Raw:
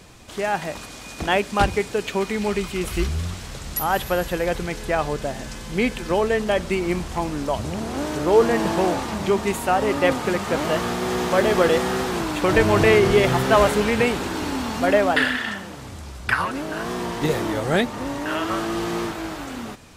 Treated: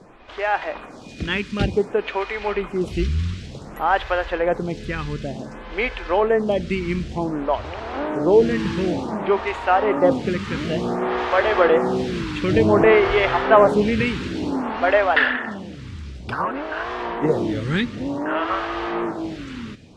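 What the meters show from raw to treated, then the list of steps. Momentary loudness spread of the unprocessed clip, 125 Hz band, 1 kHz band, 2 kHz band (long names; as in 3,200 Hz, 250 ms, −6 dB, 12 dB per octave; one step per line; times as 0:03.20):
12 LU, 0.0 dB, +1.0 dB, +0.5 dB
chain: low-pass filter 3,500 Hz 12 dB per octave
phaser with staggered stages 0.55 Hz
level +4 dB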